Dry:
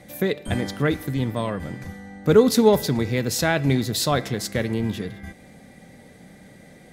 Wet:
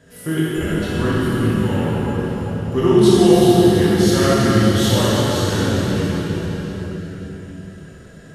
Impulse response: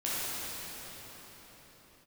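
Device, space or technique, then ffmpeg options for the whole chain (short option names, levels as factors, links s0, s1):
slowed and reverbed: -filter_complex "[0:a]asetrate=36603,aresample=44100[s0];[1:a]atrim=start_sample=2205[s1];[s0][s1]afir=irnorm=-1:irlink=0,volume=0.668"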